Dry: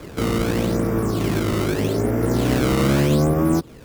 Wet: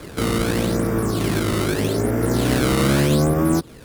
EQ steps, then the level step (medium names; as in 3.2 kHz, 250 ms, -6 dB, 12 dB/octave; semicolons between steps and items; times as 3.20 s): fifteen-band graphic EQ 1.6 kHz +3 dB, 4 kHz +4 dB, 10 kHz +7 dB; 0.0 dB